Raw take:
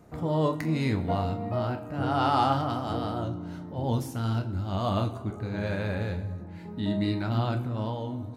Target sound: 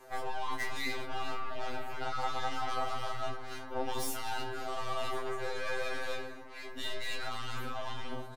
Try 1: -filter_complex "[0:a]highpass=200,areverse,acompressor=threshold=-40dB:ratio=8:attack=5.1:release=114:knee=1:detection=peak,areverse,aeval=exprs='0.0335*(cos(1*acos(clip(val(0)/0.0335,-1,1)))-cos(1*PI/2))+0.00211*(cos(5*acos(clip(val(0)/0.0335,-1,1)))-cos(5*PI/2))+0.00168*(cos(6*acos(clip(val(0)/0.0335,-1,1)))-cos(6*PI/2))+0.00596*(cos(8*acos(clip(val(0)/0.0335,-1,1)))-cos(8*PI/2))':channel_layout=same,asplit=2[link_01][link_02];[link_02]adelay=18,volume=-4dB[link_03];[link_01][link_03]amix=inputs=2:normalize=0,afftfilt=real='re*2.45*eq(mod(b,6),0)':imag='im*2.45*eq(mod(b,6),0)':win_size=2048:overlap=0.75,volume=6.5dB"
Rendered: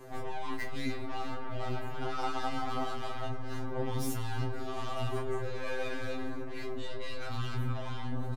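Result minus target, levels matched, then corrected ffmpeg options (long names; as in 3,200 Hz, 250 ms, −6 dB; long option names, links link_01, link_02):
250 Hz band +7.0 dB
-filter_complex "[0:a]highpass=580,areverse,acompressor=threshold=-40dB:ratio=8:attack=5.1:release=114:knee=1:detection=peak,areverse,aeval=exprs='0.0335*(cos(1*acos(clip(val(0)/0.0335,-1,1)))-cos(1*PI/2))+0.00211*(cos(5*acos(clip(val(0)/0.0335,-1,1)))-cos(5*PI/2))+0.00168*(cos(6*acos(clip(val(0)/0.0335,-1,1)))-cos(6*PI/2))+0.00596*(cos(8*acos(clip(val(0)/0.0335,-1,1)))-cos(8*PI/2))':channel_layout=same,asplit=2[link_01][link_02];[link_02]adelay=18,volume=-4dB[link_03];[link_01][link_03]amix=inputs=2:normalize=0,afftfilt=real='re*2.45*eq(mod(b,6),0)':imag='im*2.45*eq(mod(b,6),0)':win_size=2048:overlap=0.75,volume=6.5dB"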